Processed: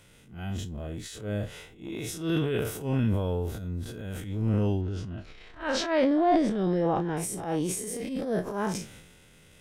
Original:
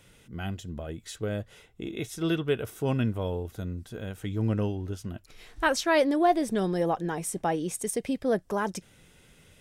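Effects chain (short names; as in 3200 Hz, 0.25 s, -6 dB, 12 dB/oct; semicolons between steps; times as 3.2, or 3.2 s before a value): time blur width 87 ms; 4.81–7.17 LPF 4100 Hz 12 dB/oct; transient shaper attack -11 dB, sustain +8 dB; gain +2.5 dB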